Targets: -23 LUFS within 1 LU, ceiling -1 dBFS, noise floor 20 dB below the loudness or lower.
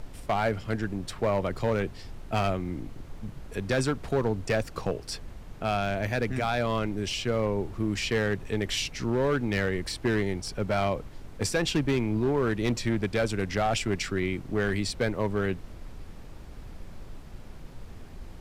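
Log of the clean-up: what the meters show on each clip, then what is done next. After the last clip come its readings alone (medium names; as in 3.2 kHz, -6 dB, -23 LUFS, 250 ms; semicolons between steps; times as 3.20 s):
clipped samples 1.2%; clipping level -19.0 dBFS; noise floor -45 dBFS; noise floor target -49 dBFS; loudness -29.0 LUFS; peak level -19.0 dBFS; loudness target -23.0 LUFS
-> clip repair -19 dBFS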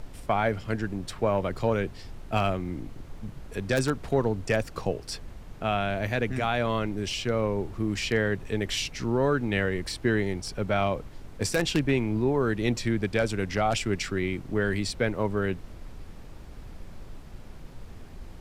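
clipped samples 0.0%; noise floor -45 dBFS; noise floor target -48 dBFS
-> noise print and reduce 6 dB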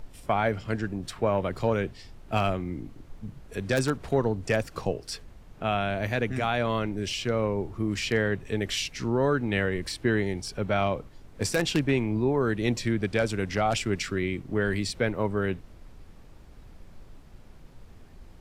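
noise floor -50 dBFS; loudness -28.0 LUFS; peak level -10.0 dBFS; loudness target -23.0 LUFS
-> trim +5 dB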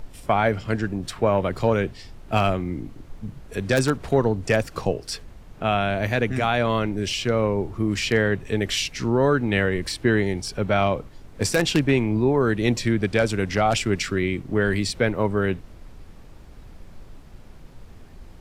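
loudness -23.0 LUFS; peak level -5.0 dBFS; noise floor -45 dBFS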